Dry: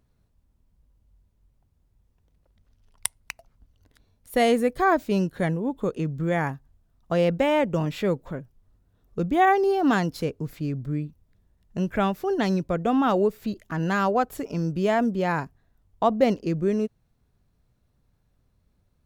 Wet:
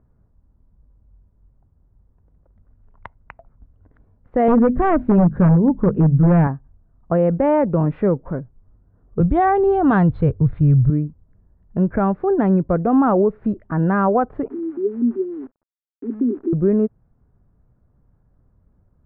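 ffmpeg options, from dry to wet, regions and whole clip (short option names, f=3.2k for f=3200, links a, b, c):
-filter_complex "[0:a]asettb=1/sr,asplit=3[a][b][c];[a]atrim=end=4.484[d];[b]atrim=start=4.48:end=6.47,asetpts=PTS-STARTPTS,afade=t=in:d=0.004:c=qsin,afade=t=out:st=1.986:d=0.004:c=qsin,bass=f=250:g=11,treble=f=4k:g=1,bandreject=f=50:t=h:w=6,bandreject=f=100:t=h:w=6,bandreject=f=150:t=h:w=6,bandreject=f=200:t=h:w=6,bandreject=f=250:t=h:w=6,aeval=exprs='0.178*(abs(mod(val(0)/0.178+3,4)-2)-1)':c=same[e];[c]atrim=start=6.466[f];[d][e]acrossfade=d=0.004:c1=hsin:c2=qsin[g];[g][f]acrossfade=d=0.004:c1=qsin:c2=hsin,asettb=1/sr,asplit=3[h][i][j];[h]atrim=end=9.204[k];[i]atrim=start=9.2:end=10.9,asetpts=PTS-STARTPTS,afade=t=in:d=0.004:c=qsin,afade=t=out:st=1.696:d=0.004:c=qsin,lowpass=f=3.8k:t=q:w=5.7,lowshelf=f=160:t=q:w=1.5:g=12[l];[j]atrim=start=10.896[m];[k][l]acrossfade=d=0.004:c1=hsin:c2=qsin[n];[n][m]acrossfade=d=0.004:c1=qsin:c2=hsin,asettb=1/sr,asplit=3[o][p][q];[o]atrim=end=14.484[r];[p]atrim=start=14.48:end=16.53,asetpts=PTS-STARTPTS,afade=t=in:d=0.004:c=qsin,afade=t=out:st=2.046:d=0.004:c=qsin,asuperpass=centerf=310:order=12:qfactor=1.7,acrusher=bits=9:dc=4:mix=0:aa=0.000001[s];[q]atrim=start=16.526[t];[r][s]acrossfade=d=0.004:c1=hsin:c2=qsin[u];[u][t]acrossfade=d=0.004:c1=qsin:c2=hsin,lowpass=f=1.5k:w=0.5412,lowpass=f=1.5k:w=1.3066,lowshelf=f=470:g=4,alimiter=level_in=12dB:limit=-1dB:release=50:level=0:latency=1,volume=-7dB"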